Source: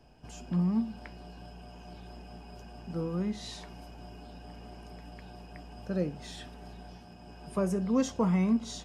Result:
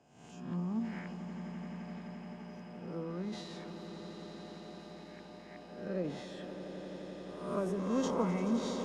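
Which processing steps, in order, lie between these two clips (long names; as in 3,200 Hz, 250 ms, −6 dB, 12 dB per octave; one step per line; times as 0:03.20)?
peak hold with a rise ahead of every peak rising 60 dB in 0.78 s
high-pass filter 190 Hz 12 dB per octave
transient designer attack +4 dB, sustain +8 dB
low-pass filter 2,400 Hz 6 dB per octave
on a send: echo that builds up and dies away 86 ms, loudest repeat 8, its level −13.5 dB
on the sum: level −6.5 dB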